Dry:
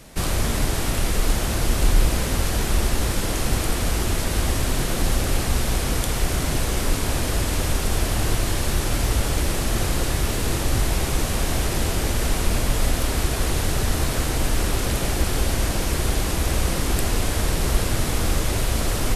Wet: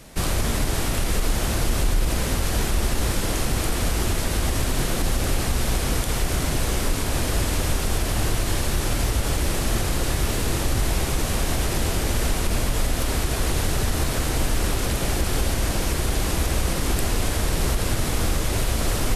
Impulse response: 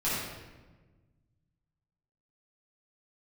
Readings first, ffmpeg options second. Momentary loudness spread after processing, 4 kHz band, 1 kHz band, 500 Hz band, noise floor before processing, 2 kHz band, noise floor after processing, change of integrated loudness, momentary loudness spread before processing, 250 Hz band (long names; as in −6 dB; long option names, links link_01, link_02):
1 LU, −0.5 dB, −0.5 dB, −0.5 dB, −25 dBFS, −0.5 dB, −25 dBFS, −1.0 dB, 1 LU, −0.5 dB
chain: -af "alimiter=limit=-12dB:level=0:latency=1:release=63"